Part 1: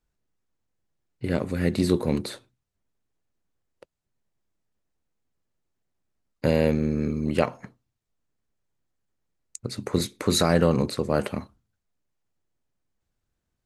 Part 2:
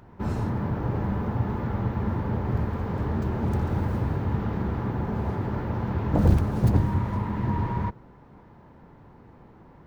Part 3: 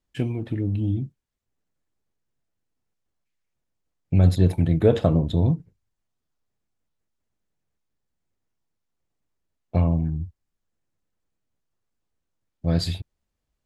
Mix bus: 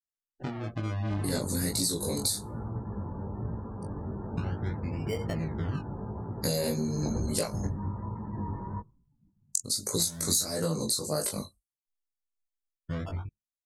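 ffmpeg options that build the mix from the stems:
-filter_complex "[0:a]aphaser=in_gain=1:out_gain=1:delay=2:decay=0.26:speed=0.75:type=sinusoidal,aexciter=amount=8.7:drive=8.7:freq=4.2k,flanger=delay=17.5:depth=6.1:speed=1.6,volume=2.5dB[a];[1:a]adelay=900,volume=-6dB[b];[2:a]acompressor=threshold=-24dB:ratio=6,acrusher=samples=33:mix=1:aa=0.000001:lfo=1:lforange=33:lforate=0.36,adelay=250,volume=-1.5dB[c];[a][b][c]amix=inputs=3:normalize=0,afftdn=nr=34:nf=-43,flanger=delay=18:depth=2.8:speed=1.1,acompressor=threshold=-26dB:ratio=6"

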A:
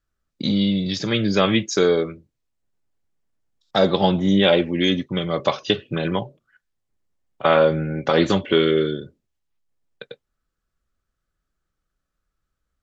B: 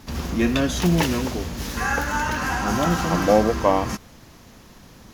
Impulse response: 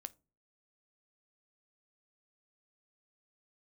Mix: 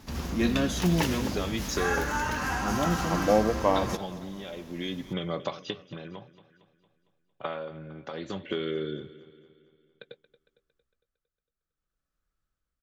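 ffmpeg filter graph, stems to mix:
-filter_complex "[0:a]acompressor=threshold=-22dB:ratio=6,tremolo=f=0.57:d=0.7,volume=-5dB,asplit=2[a][b];[b]volume=-17dB[c];[1:a]volume=-5.5dB,asplit=2[d][e];[e]volume=-19dB[f];[c][f]amix=inputs=2:normalize=0,aecho=0:1:228|456|684|912|1140|1368|1596|1824:1|0.52|0.27|0.141|0.0731|0.038|0.0198|0.0103[g];[a][d][g]amix=inputs=3:normalize=0"

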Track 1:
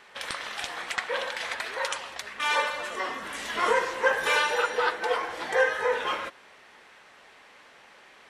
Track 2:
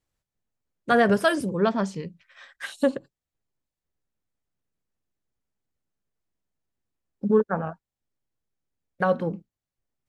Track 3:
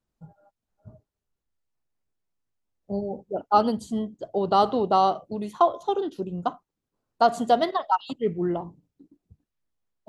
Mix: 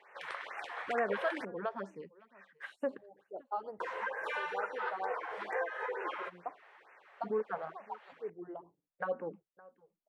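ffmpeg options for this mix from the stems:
-filter_complex "[0:a]volume=-4dB,asplit=3[a][b][c];[a]atrim=end=1.45,asetpts=PTS-STARTPTS,afade=t=out:st=1.446:d=0.004:c=hsin[d];[b]atrim=start=1.45:end=3.8,asetpts=PTS-STARTPTS,volume=0[e];[c]atrim=start=3.8,asetpts=PTS-STARTPTS,afade=t=in:d=0.004:c=hsin[f];[d][e][f]concat=n=3:v=0:a=1[g];[1:a]alimiter=limit=-13dB:level=0:latency=1:release=182,volume=-8.5dB,asplit=3[h][i][j];[i]volume=-23dB[k];[2:a]equalizer=f=2.3k:w=0.65:g=-6,volume=-12dB[l];[j]apad=whole_len=444629[m];[l][m]sidechaincompress=threshold=-48dB:ratio=3:attack=41:release=360[n];[g][n]amix=inputs=2:normalize=0,equalizer=f=240:t=o:w=0.25:g=-15,acompressor=threshold=-32dB:ratio=4,volume=0dB[o];[k]aecho=0:1:565:1[p];[h][o][p]amix=inputs=3:normalize=0,acrossover=split=300 2500:gain=0.1 1 0.112[q][r][s];[q][r][s]amix=inputs=3:normalize=0,afftfilt=real='re*(1-between(b*sr/1024,220*pow(4200/220,0.5+0.5*sin(2*PI*2.2*pts/sr))/1.41,220*pow(4200/220,0.5+0.5*sin(2*PI*2.2*pts/sr))*1.41))':imag='im*(1-between(b*sr/1024,220*pow(4200/220,0.5+0.5*sin(2*PI*2.2*pts/sr))/1.41,220*pow(4200/220,0.5+0.5*sin(2*PI*2.2*pts/sr))*1.41))':win_size=1024:overlap=0.75"

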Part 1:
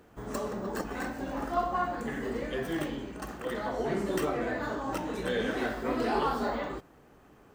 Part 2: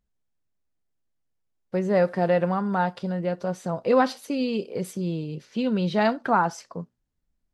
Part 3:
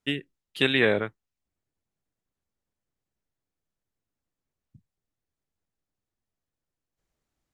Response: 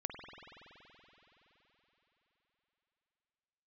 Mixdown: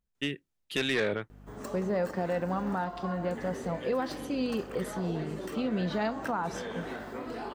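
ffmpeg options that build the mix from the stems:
-filter_complex "[0:a]aeval=exprs='val(0)+0.00794*(sin(2*PI*50*n/s)+sin(2*PI*2*50*n/s)/2+sin(2*PI*3*50*n/s)/3+sin(2*PI*4*50*n/s)/4+sin(2*PI*5*50*n/s)/5)':c=same,lowshelf=f=70:g=-8,acompressor=threshold=-31dB:ratio=6,adelay=1300,volume=-4dB[a];[1:a]volume=-6.5dB,asplit=2[b][c];[c]volume=-13.5dB[d];[2:a]asoftclip=type=tanh:threshold=-18dB,adelay=150,volume=-1.5dB[e];[3:a]atrim=start_sample=2205[f];[d][f]afir=irnorm=-1:irlink=0[g];[a][b][e][g]amix=inputs=4:normalize=0,alimiter=limit=-21.5dB:level=0:latency=1:release=136"

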